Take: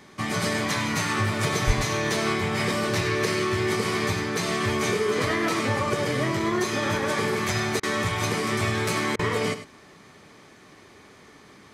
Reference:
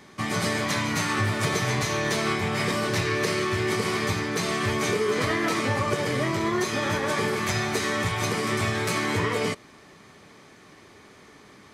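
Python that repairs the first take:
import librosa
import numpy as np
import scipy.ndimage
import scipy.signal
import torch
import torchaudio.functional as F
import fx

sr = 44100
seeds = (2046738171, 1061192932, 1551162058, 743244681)

y = fx.highpass(x, sr, hz=140.0, slope=24, at=(1.66, 1.78), fade=0.02)
y = fx.fix_interpolate(y, sr, at_s=(7.8, 9.16), length_ms=30.0)
y = fx.fix_echo_inverse(y, sr, delay_ms=100, level_db=-12.0)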